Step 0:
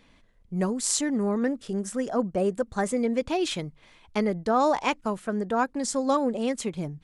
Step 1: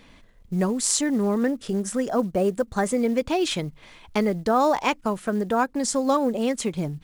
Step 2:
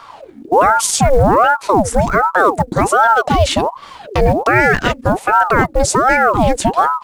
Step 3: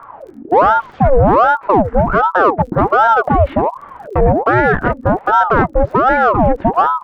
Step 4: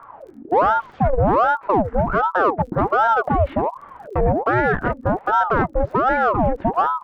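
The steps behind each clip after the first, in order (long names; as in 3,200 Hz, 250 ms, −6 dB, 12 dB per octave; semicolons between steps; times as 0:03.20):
in parallel at +2.5 dB: downward compressor 5 to 1, threshold −34 dBFS, peak gain reduction 14 dB; on the sum: floating-point word with a short mantissa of 4 bits
low-shelf EQ 350 Hz +7.5 dB; boost into a limiter +11.5 dB; ring modulator whose carrier an LFO sweeps 700 Hz, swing 65%, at 1.3 Hz
low-pass filter 1,600 Hz 24 dB per octave; surface crackle 31 per second −38 dBFS; in parallel at −5.5 dB: soft clipping −10.5 dBFS, distortion −11 dB; on the sum: level −1.5 dB
saturating transformer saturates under 40 Hz; level −6 dB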